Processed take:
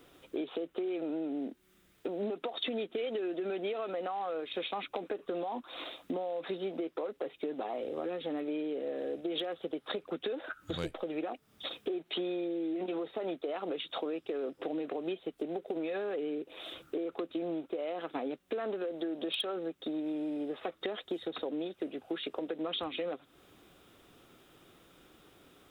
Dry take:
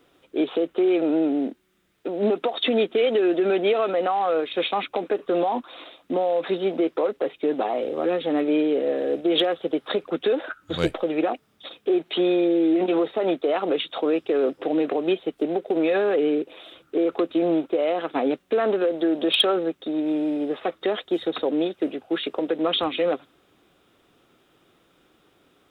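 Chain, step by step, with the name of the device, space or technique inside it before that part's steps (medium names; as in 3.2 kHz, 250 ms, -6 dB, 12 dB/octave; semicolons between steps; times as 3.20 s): ASMR close-microphone chain (bass shelf 100 Hz +6 dB; compression 5:1, threshold -35 dBFS, peak gain reduction 18.5 dB; treble shelf 6.9 kHz +6.5 dB)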